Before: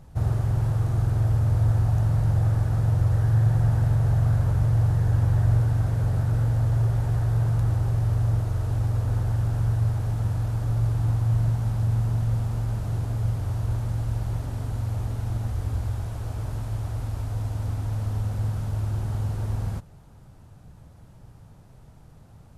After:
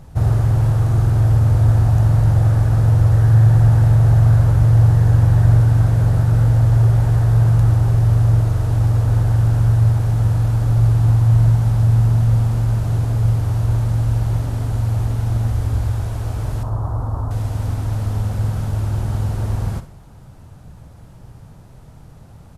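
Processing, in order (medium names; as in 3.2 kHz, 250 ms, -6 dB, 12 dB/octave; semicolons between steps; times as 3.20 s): 16.63–17.31 s: resonant high shelf 1.6 kHz -13 dB, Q 3; feedback delay 62 ms, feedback 43%, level -13 dB; trim +7.5 dB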